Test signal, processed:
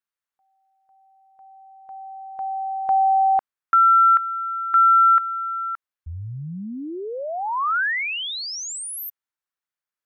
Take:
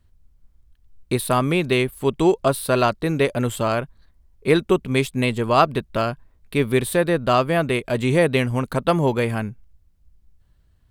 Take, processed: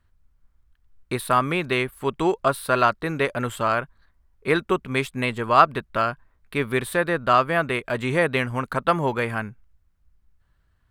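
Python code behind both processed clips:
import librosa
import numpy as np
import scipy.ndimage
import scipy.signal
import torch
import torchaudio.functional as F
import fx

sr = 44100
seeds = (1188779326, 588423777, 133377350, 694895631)

y = fx.peak_eq(x, sr, hz=1400.0, db=11.0, octaves=1.6)
y = y * librosa.db_to_amplitude(-6.5)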